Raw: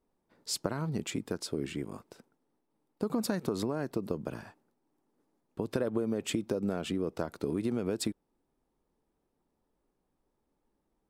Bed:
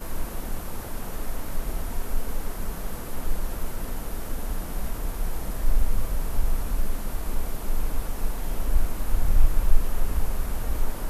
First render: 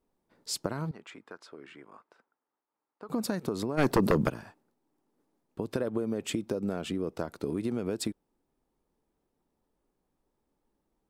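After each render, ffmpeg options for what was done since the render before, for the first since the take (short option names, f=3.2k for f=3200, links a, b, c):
-filter_complex "[0:a]asettb=1/sr,asplit=3[a][b][c];[a]atrim=end=0.914[d];[b]atrim=start=0.91:end=3.09,asetpts=PTS-STARTPTS,afade=t=in:d=0.004:c=qsin,afade=t=out:st=2.176:d=0.004:c=qsin,bandpass=f=1.3k:t=q:w=1.4[e];[c]atrim=start=3.086[f];[d][e]acrossfade=d=0.004:c1=hsin:c2=qsin[g];[g][f]acrossfade=d=0.004:c1=qsin:c2=hsin,asplit=3[h][i][j];[h]afade=t=out:st=3.77:d=0.02[k];[i]aeval=exprs='0.15*sin(PI/2*3.55*val(0)/0.15)':c=same,afade=t=in:st=3.77:d=0.02,afade=t=out:st=4.28:d=0.02[l];[j]afade=t=in:st=4.28:d=0.02[m];[k][l][m]amix=inputs=3:normalize=0"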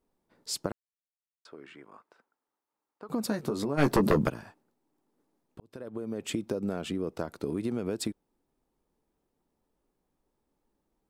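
-filter_complex "[0:a]asettb=1/sr,asplit=3[a][b][c];[a]atrim=end=3.284[d];[b]atrim=start=3.28:end=4.19,asetpts=PTS-STARTPTS,afade=t=in:d=0.004:c=qsin,afade=t=out:st=0.906:d=0.004:c=qsin,asplit=2[e][f];[f]adelay=14,volume=-6dB[g];[e][g]amix=inputs=2:normalize=0,atrim=end_sample=40131[h];[c]atrim=start=4.186[i];[d][h]acrossfade=d=0.004:c1=hsin:c2=qsin[j];[j][i]acrossfade=d=0.004:c1=qsin:c2=hsin,asplit=4[k][l][m][n];[k]atrim=end=0.72,asetpts=PTS-STARTPTS,afade=t=out:st=0.716:d=0.004:c=hsin[o];[l]atrim=start=0.72:end=1.45,asetpts=PTS-STARTPTS,volume=0[p];[m]atrim=start=1.45:end=5.6,asetpts=PTS-STARTPTS,afade=t=in:d=0.004:c=hsin,afade=t=out:st=4.146:d=0.004:c=hsin[q];[n]atrim=start=5.6,asetpts=PTS-STARTPTS,afade=t=in:d=0.77[r];[o][p][q][r]concat=n=4:v=0:a=1"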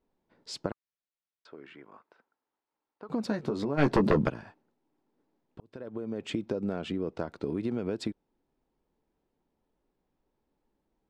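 -af "lowpass=4.2k,bandreject=f=1.2k:w=17"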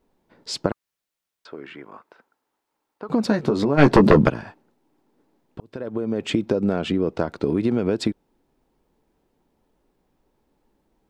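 -af "volume=10.5dB"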